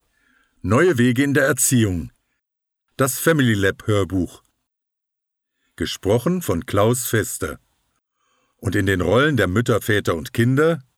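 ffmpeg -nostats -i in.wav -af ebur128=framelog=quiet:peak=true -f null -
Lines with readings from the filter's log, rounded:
Integrated loudness:
  I:         -19.2 LUFS
  Threshold: -30.2 LUFS
Loudness range:
  LRA:         4.0 LU
  Threshold: -41.5 LUFS
  LRA low:   -23.3 LUFS
  LRA high:  -19.2 LUFS
True peak:
  Peak:       -3.1 dBFS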